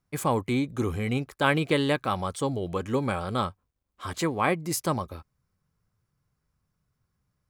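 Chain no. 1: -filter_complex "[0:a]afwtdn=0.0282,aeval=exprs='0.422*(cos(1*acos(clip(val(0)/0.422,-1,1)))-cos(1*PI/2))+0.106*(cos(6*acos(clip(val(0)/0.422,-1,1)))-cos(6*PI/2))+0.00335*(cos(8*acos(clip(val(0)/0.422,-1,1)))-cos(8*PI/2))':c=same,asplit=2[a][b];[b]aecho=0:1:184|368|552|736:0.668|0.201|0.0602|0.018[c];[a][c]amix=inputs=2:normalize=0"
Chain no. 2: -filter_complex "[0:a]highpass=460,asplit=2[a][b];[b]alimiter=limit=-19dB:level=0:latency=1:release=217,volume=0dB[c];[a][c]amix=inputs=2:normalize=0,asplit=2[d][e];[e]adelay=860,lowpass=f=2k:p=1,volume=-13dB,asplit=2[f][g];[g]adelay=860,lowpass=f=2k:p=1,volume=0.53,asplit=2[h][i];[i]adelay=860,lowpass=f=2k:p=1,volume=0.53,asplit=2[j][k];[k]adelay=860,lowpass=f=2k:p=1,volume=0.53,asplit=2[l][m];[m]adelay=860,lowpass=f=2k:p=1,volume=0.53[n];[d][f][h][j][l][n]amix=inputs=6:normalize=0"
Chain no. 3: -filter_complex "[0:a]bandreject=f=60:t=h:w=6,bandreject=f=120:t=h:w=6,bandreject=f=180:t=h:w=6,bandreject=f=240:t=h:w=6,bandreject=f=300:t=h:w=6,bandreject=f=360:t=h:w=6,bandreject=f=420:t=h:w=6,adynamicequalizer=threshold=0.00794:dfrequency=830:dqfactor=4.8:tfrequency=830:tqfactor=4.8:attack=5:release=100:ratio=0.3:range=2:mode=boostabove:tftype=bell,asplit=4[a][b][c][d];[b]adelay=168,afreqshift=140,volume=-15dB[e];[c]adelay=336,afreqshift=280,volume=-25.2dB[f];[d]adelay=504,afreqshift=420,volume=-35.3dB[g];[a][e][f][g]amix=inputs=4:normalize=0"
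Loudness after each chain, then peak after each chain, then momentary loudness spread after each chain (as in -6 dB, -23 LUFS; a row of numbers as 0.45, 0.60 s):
-25.0, -26.5, -27.5 LUFS; -4.5, -6.0, -6.5 dBFS; 10, 18, 8 LU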